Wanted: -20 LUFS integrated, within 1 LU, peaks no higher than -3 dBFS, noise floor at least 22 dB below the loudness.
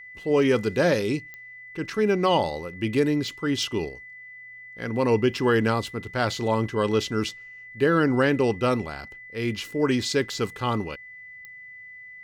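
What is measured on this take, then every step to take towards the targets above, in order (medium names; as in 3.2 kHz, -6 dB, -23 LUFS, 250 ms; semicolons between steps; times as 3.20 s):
clicks found 4; steady tone 2 kHz; tone level -41 dBFS; loudness -24.5 LUFS; peak level -9.5 dBFS; loudness target -20.0 LUFS
-> de-click; band-stop 2 kHz, Q 30; trim +4.5 dB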